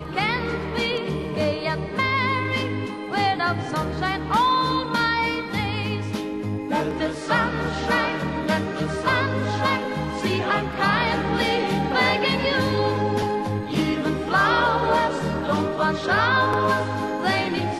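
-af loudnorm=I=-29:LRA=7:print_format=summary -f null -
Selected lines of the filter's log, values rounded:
Input Integrated:    -22.6 LUFS
Input True Peak:      -6.8 dBTP
Input LRA:             2.8 LU
Input Threshold:     -32.6 LUFS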